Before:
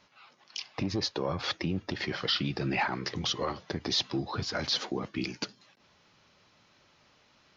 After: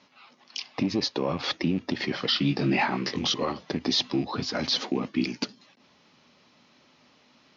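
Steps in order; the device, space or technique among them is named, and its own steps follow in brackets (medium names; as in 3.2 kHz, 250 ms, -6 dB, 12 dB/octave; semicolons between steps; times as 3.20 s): car door speaker with a rattle (rattle on loud lows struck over -39 dBFS, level -39 dBFS; cabinet simulation 88–6600 Hz, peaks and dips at 100 Hz -9 dB, 250 Hz +9 dB, 1.5 kHz -4 dB); 2.39–3.34 s: doubling 21 ms -4.5 dB; trim +3.5 dB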